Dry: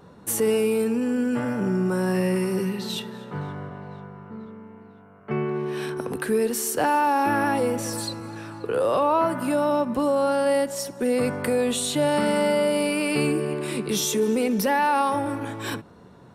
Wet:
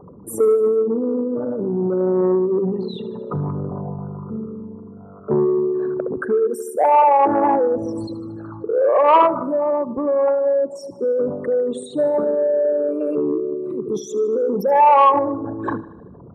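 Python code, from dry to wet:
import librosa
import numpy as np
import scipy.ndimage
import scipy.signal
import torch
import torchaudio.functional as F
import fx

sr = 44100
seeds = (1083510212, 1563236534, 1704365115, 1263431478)

y = fx.envelope_sharpen(x, sr, power=3.0)
y = fx.high_shelf_res(y, sr, hz=1700.0, db=-12.0, q=3.0)
y = fx.rider(y, sr, range_db=10, speed_s=2.0)
y = fx.dynamic_eq(y, sr, hz=860.0, q=1.0, threshold_db=-30.0, ratio=4.0, max_db=5)
y = fx.echo_feedback(y, sr, ms=76, feedback_pct=59, wet_db=-17.0)
y = fx.transformer_sat(y, sr, knee_hz=660.0)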